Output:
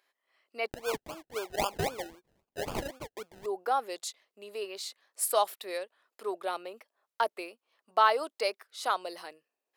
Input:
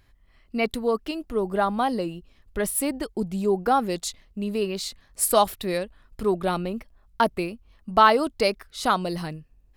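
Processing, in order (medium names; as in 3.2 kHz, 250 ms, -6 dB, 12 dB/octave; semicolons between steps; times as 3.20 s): high-pass 430 Hz 24 dB/octave; 0.68–3.46 s: decimation with a swept rate 31×, swing 60% 3.8 Hz; trim -7 dB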